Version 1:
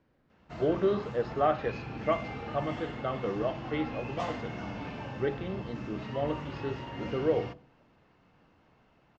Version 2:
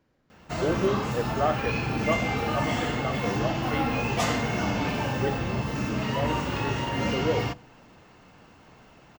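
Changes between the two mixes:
background +11.0 dB; master: remove air absorption 150 m

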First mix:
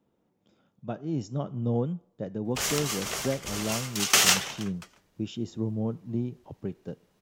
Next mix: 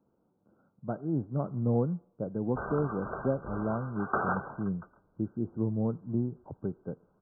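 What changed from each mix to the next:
master: add brick-wall FIR low-pass 1600 Hz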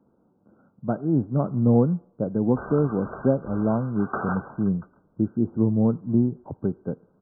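speech +7.5 dB; master: add bell 240 Hz +3.5 dB 0.57 oct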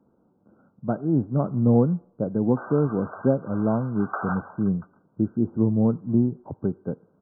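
background: add HPF 560 Hz 24 dB/oct

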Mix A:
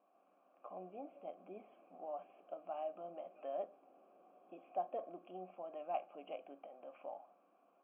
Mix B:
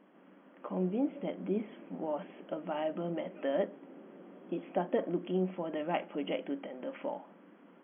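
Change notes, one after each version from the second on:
speech: remove air absorption 140 m; master: remove vowel filter a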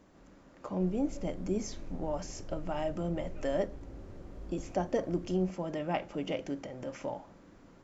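master: remove brick-wall FIR band-pass 170–3400 Hz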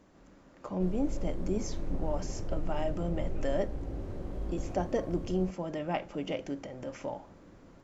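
background +9.0 dB

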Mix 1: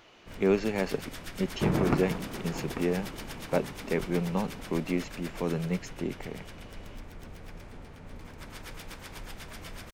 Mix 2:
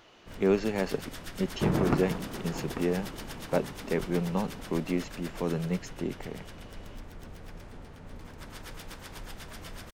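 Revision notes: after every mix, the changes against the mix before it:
master: add bell 2300 Hz -4 dB 0.3 oct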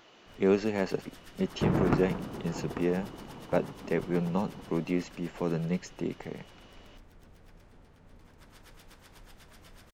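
first sound -10.5 dB

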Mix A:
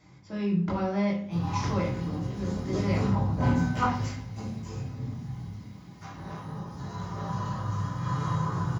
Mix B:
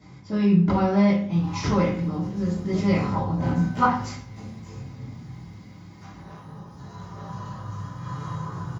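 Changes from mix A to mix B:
speech: send +8.0 dB; background -3.5 dB

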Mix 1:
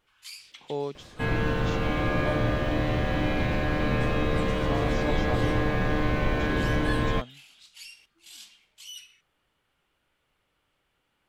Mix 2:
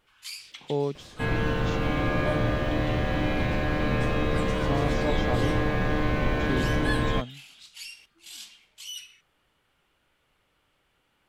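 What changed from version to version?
speech: add low shelf 330 Hz +10 dB; first sound +4.0 dB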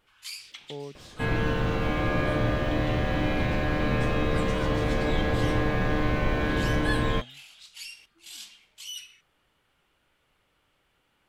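speech -11.5 dB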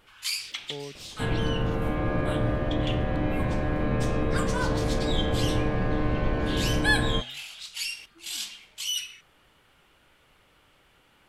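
first sound +9.0 dB; second sound: add LPF 1100 Hz 6 dB/oct

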